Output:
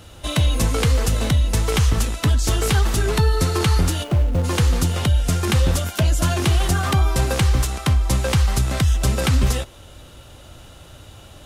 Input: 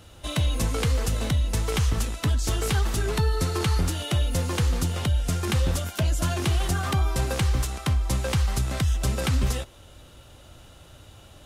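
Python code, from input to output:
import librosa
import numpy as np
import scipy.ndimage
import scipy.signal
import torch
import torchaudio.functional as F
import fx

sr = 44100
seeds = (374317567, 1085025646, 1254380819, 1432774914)

y = fx.median_filter(x, sr, points=25, at=(4.03, 4.43), fade=0.02)
y = y * 10.0 ** (6.0 / 20.0)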